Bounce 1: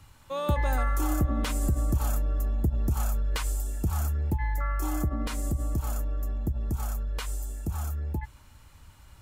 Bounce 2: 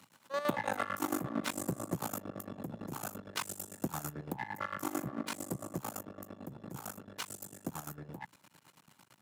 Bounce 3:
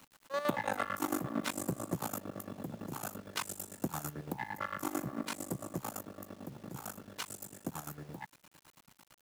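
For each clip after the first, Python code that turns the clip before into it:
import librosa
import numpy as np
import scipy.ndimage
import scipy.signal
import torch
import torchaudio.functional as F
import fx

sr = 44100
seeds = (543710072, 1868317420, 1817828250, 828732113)

y1 = np.maximum(x, 0.0)
y1 = fx.chopper(y1, sr, hz=8.9, depth_pct=65, duty_pct=45)
y1 = scipy.signal.sosfilt(scipy.signal.butter(4, 160.0, 'highpass', fs=sr, output='sos'), y1)
y1 = y1 * 10.0 ** (2.5 / 20.0)
y2 = fx.quant_dither(y1, sr, seeds[0], bits=10, dither='none')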